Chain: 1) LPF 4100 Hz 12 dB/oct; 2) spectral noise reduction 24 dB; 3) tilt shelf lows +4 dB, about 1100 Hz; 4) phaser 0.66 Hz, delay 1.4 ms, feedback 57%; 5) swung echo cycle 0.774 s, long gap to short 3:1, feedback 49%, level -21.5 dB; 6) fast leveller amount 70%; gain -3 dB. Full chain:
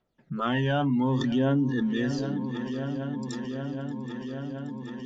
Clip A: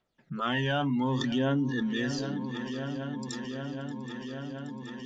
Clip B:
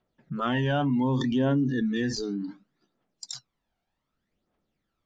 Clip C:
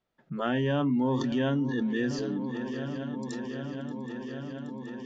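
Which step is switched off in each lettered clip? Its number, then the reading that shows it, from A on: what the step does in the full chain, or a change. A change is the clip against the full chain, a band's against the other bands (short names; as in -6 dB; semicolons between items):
3, 4 kHz band +5.5 dB; 5, momentary loudness spread change +4 LU; 4, 500 Hz band +2.0 dB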